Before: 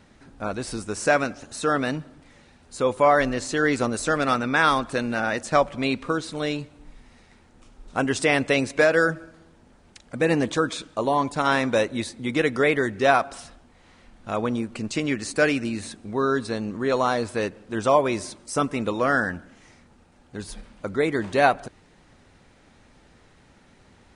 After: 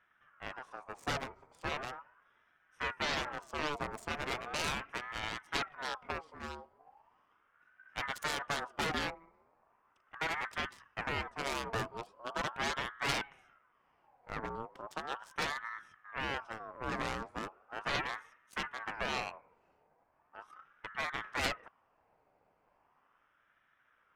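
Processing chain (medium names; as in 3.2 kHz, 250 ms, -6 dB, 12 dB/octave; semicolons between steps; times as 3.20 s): local Wiener filter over 15 samples; Chebyshev shaper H 3 -6 dB, 8 -17 dB, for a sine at -4.5 dBFS; ring modulator with a swept carrier 1.1 kHz, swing 40%, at 0.38 Hz; trim -7.5 dB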